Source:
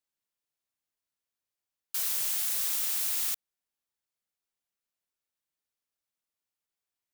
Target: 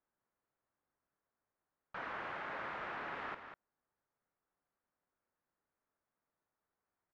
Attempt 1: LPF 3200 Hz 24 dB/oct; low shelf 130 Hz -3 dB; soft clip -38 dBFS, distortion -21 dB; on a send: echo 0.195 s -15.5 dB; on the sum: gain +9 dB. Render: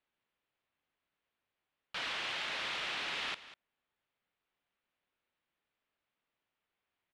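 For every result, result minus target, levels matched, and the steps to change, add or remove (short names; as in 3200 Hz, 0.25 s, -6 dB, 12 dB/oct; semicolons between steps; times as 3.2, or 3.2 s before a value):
4000 Hz band +13.5 dB; echo-to-direct -7 dB
change: LPF 1600 Hz 24 dB/oct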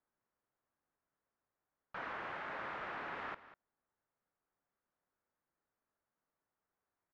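echo-to-direct -7 dB
change: echo 0.195 s -8.5 dB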